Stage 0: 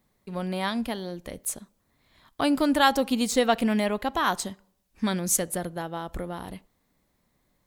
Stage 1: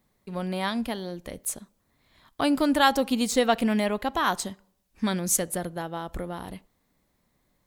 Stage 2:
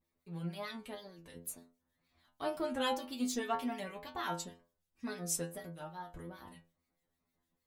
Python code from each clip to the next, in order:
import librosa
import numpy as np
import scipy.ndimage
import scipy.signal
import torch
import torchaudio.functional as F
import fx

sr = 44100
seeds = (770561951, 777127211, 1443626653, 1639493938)

y1 = x
y2 = fx.wow_flutter(y1, sr, seeds[0], rate_hz=2.1, depth_cents=150.0)
y2 = fx.harmonic_tremolo(y2, sr, hz=6.5, depth_pct=70, crossover_hz=1700.0)
y2 = fx.stiff_resonator(y2, sr, f0_hz=83.0, decay_s=0.38, stiffness=0.002)